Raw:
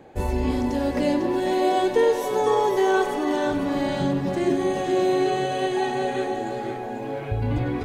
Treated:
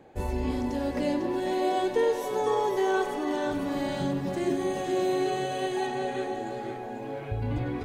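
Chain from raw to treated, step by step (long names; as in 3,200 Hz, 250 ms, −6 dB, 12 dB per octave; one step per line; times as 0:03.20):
0:03.51–0:05.87: high-shelf EQ 7,700 Hz +7 dB
level −5.5 dB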